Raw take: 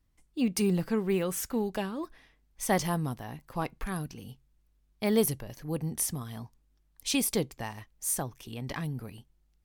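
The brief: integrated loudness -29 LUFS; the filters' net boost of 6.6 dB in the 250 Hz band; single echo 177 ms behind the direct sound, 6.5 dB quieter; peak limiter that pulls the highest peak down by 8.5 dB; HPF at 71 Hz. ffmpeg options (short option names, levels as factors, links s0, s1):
-af "highpass=71,equalizer=f=250:t=o:g=8.5,alimiter=limit=0.119:level=0:latency=1,aecho=1:1:177:0.473,volume=1.12"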